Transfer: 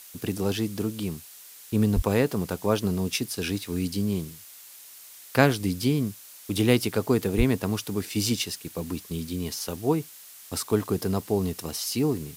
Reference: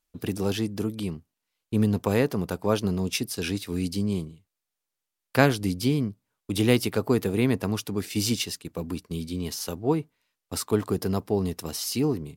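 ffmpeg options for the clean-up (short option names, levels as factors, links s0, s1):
-filter_complex "[0:a]asplit=3[s0][s1][s2];[s0]afade=t=out:st=1.95:d=0.02[s3];[s1]highpass=f=140:w=0.5412,highpass=f=140:w=1.3066,afade=t=in:st=1.95:d=0.02,afade=t=out:st=2.07:d=0.02[s4];[s2]afade=t=in:st=2.07:d=0.02[s5];[s3][s4][s5]amix=inputs=3:normalize=0,asplit=3[s6][s7][s8];[s6]afade=t=out:st=7.37:d=0.02[s9];[s7]highpass=f=140:w=0.5412,highpass=f=140:w=1.3066,afade=t=in:st=7.37:d=0.02,afade=t=out:st=7.49:d=0.02[s10];[s8]afade=t=in:st=7.49:d=0.02[s11];[s9][s10][s11]amix=inputs=3:normalize=0,afftdn=nr=30:nf=-47"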